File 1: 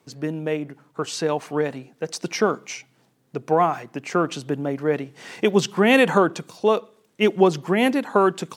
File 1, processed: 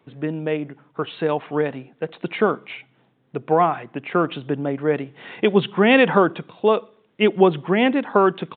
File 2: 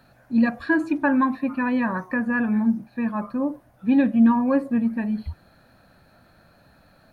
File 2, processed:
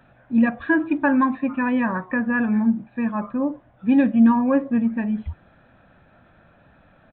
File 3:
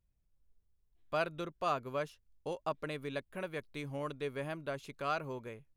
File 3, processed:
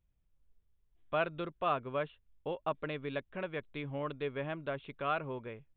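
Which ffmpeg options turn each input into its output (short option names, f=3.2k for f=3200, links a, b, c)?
-af "aresample=8000,aresample=44100,volume=1.5dB"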